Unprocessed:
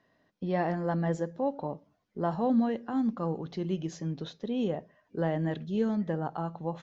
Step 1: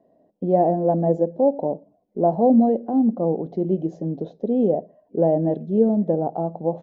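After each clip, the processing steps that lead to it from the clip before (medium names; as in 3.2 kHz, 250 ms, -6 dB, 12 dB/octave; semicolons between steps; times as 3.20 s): FFT filter 120 Hz 0 dB, 200 Hz +9 dB, 690 Hz +14 dB, 1.3 kHz -15 dB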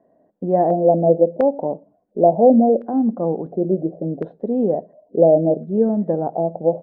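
LFO low-pass square 0.71 Hz 610–1600 Hz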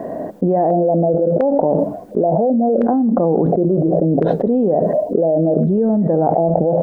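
level flattener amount 100%; trim -6.5 dB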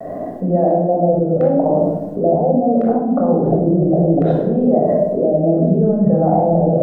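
vibrato 1.3 Hz 62 cents; simulated room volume 3400 m³, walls furnished, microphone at 6.5 m; trim -6.5 dB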